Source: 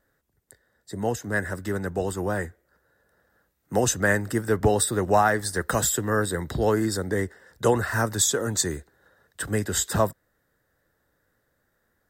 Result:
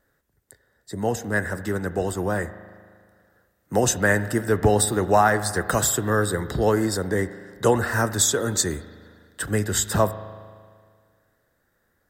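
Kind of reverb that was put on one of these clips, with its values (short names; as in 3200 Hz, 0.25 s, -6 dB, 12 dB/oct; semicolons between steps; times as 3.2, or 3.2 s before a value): spring tank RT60 1.9 s, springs 38 ms, chirp 75 ms, DRR 13 dB; gain +2 dB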